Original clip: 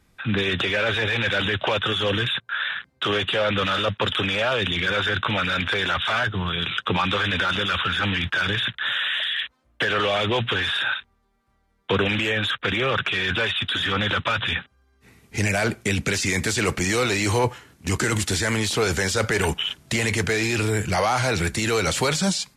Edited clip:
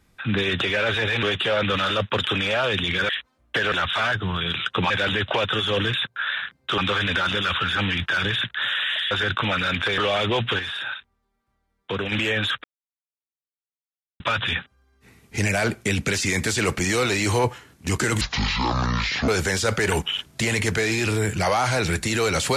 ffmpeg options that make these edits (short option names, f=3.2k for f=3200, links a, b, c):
-filter_complex "[0:a]asplit=14[a][b][c][d][e][f][g][h][i][j][k][l][m][n];[a]atrim=end=1.232[o];[b]atrim=start=3.108:end=4.972[p];[c]atrim=start=9.348:end=9.982[q];[d]atrim=start=5.838:end=7.022[r];[e]atrim=start=1.228:end=3.112[s];[f]atrim=start=7.018:end=9.352[t];[g]atrim=start=4.968:end=5.842[u];[h]atrim=start=9.978:end=10.592[v];[i]atrim=start=10.588:end=12.122,asetpts=PTS-STARTPTS,volume=-6dB[w];[j]atrim=start=12.118:end=12.64,asetpts=PTS-STARTPTS,afade=t=out:st=0.518:d=0.004:c=hsin[x];[k]atrim=start=12.64:end=14.2,asetpts=PTS-STARTPTS,volume=0[y];[l]atrim=start=14.2:end=18.214,asetpts=PTS-STARTPTS,afade=t=in:d=0.004:c=hsin[z];[m]atrim=start=18.21:end=18.8,asetpts=PTS-STARTPTS,asetrate=24255,aresample=44100,atrim=end_sample=47307,asetpts=PTS-STARTPTS[aa];[n]atrim=start=18.796[ab];[o][p]acrossfade=d=0.004:c1=hsin:c2=hsin[ac];[ac][q]acrossfade=d=0.004:c1=hsin:c2=hsin[ad];[ad][r]acrossfade=d=0.004:c1=hsin:c2=hsin[ae];[ae][s]acrossfade=d=0.004:c1=hsin:c2=hsin[af];[af][t]acrossfade=d=0.004:c1=hsin:c2=hsin[ag];[ag][u]acrossfade=d=0.004:c1=hsin:c2=hsin[ah];[ah][v]acrossfade=d=0.004:c1=hsin:c2=hsin[ai];[ai][w]acrossfade=d=0.004:c1=hsin:c2=hsin[aj];[x][y][z]concat=n=3:v=0:a=1[ak];[aj][ak]acrossfade=d=0.004:c1=hsin:c2=hsin[al];[al][aa]acrossfade=d=0.004:c1=hsin:c2=hsin[am];[am][ab]acrossfade=d=0.004:c1=hsin:c2=hsin"